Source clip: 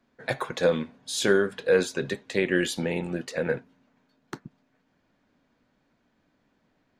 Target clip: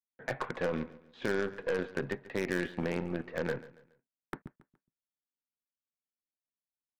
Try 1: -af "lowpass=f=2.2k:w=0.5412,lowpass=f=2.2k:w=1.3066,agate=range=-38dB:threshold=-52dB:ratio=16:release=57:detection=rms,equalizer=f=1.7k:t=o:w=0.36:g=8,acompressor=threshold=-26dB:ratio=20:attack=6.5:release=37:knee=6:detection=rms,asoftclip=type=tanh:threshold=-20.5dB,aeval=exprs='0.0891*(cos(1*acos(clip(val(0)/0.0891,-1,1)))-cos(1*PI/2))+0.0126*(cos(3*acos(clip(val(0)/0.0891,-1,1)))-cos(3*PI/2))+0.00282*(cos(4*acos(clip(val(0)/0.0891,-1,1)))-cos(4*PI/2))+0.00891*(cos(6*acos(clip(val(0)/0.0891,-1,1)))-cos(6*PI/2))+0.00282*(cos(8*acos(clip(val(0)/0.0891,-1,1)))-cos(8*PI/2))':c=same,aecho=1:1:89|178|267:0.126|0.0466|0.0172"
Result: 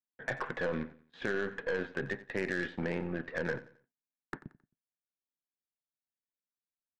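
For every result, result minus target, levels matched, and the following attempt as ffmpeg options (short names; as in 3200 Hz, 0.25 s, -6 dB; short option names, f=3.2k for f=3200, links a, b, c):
soft clip: distortion +18 dB; echo 51 ms early; 2000 Hz band +3.0 dB
-af "lowpass=f=2.2k:w=0.5412,lowpass=f=2.2k:w=1.3066,agate=range=-38dB:threshold=-52dB:ratio=16:release=57:detection=rms,equalizer=f=1.7k:t=o:w=0.36:g=8,acompressor=threshold=-26dB:ratio=20:attack=6.5:release=37:knee=6:detection=rms,asoftclip=type=tanh:threshold=-11dB,aeval=exprs='0.0891*(cos(1*acos(clip(val(0)/0.0891,-1,1)))-cos(1*PI/2))+0.0126*(cos(3*acos(clip(val(0)/0.0891,-1,1)))-cos(3*PI/2))+0.00282*(cos(4*acos(clip(val(0)/0.0891,-1,1)))-cos(4*PI/2))+0.00891*(cos(6*acos(clip(val(0)/0.0891,-1,1)))-cos(6*PI/2))+0.00282*(cos(8*acos(clip(val(0)/0.0891,-1,1)))-cos(8*PI/2))':c=same,aecho=1:1:89|178|267:0.126|0.0466|0.0172"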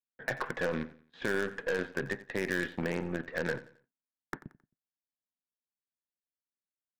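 echo 51 ms early; 2000 Hz band +3.5 dB
-af "lowpass=f=2.2k:w=0.5412,lowpass=f=2.2k:w=1.3066,agate=range=-38dB:threshold=-52dB:ratio=16:release=57:detection=rms,equalizer=f=1.7k:t=o:w=0.36:g=8,acompressor=threshold=-26dB:ratio=20:attack=6.5:release=37:knee=6:detection=rms,asoftclip=type=tanh:threshold=-11dB,aeval=exprs='0.0891*(cos(1*acos(clip(val(0)/0.0891,-1,1)))-cos(1*PI/2))+0.0126*(cos(3*acos(clip(val(0)/0.0891,-1,1)))-cos(3*PI/2))+0.00282*(cos(4*acos(clip(val(0)/0.0891,-1,1)))-cos(4*PI/2))+0.00891*(cos(6*acos(clip(val(0)/0.0891,-1,1)))-cos(6*PI/2))+0.00282*(cos(8*acos(clip(val(0)/0.0891,-1,1)))-cos(8*PI/2))':c=same,aecho=1:1:140|280|420:0.126|0.0466|0.0172"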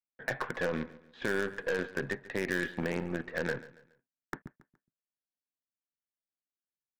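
2000 Hz band +3.5 dB
-af "lowpass=f=2.2k:w=0.5412,lowpass=f=2.2k:w=1.3066,agate=range=-38dB:threshold=-52dB:ratio=16:release=57:detection=rms,acompressor=threshold=-26dB:ratio=20:attack=6.5:release=37:knee=6:detection=rms,asoftclip=type=tanh:threshold=-11dB,aeval=exprs='0.0891*(cos(1*acos(clip(val(0)/0.0891,-1,1)))-cos(1*PI/2))+0.0126*(cos(3*acos(clip(val(0)/0.0891,-1,1)))-cos(3*PI/2))+0.00282*(cos(4*acos(clip(val(0)/0.0891,-1,1)))-cos(4*PI/2))+0.00891*(cos(6*acos(clip(val(0)/0.0891,-1,1)))-cos(6*PI/2))+0.00282*(cos(8*acos(clip(val(0)/0.0891,-1,1)))-cos(8*PI/2))':c=same,aecho=1:1:140|280|420:0.126|0.0466|0.0172"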